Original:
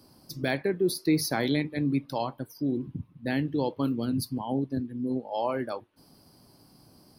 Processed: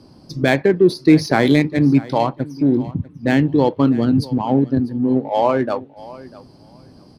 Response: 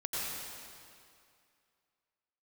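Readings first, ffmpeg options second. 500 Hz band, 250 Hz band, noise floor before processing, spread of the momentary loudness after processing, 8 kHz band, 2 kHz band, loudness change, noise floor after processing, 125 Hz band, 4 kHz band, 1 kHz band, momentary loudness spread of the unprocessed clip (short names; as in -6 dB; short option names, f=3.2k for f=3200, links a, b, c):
+12.5 dB, +13.0 dB, -59 dBFS, 10 LU, n/a, +11.5 dB, +12.5 dB, -46 dBFS, +13.0 dB, +7.0 dB, +12.5 dB, 8 LU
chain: -filter_complex "[0:a]lowpass=5.5k,asplit=2[a][b];[b]adynamicsmooth=sensitivity=6:basefreq=770,volume=-1.5dB[c];[a][c]amix=inputs=2:normalize=0,aecho=1:1:646|1292:0.106|0.0191,volume=7.5dB"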